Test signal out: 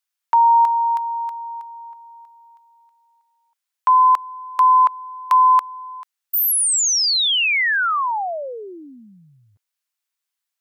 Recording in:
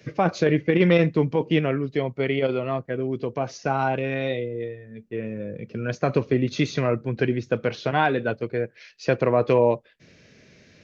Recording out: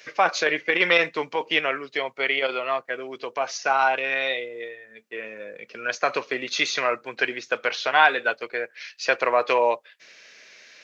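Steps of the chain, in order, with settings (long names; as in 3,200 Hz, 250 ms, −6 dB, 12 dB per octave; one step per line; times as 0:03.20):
high-pass filter 980 Hz 12 dB per octave
level +8.5 dB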